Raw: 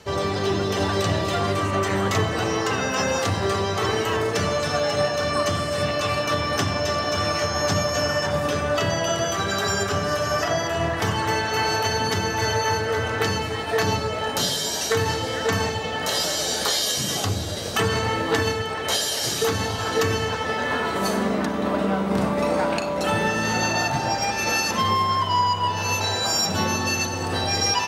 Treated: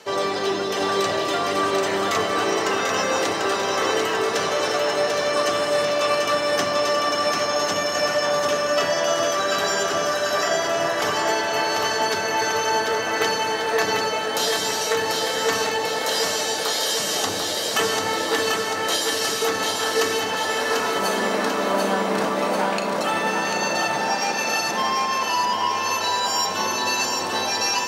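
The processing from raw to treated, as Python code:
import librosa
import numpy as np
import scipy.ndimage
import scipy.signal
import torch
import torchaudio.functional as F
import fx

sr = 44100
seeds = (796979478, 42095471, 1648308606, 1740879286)

p1 = scipy.signal.sosfilt(scipy.signal.butter(2, 320.0, 'highpass', fs=sr, output='sos'), x)
p2 = fx.rider(p1, sr, range_db=10, speed_s=0.5)
y = p2 + fx.echo_feedback(p2, sr, ms=742, feedback_pct=59, wet_db=-4, dry=0)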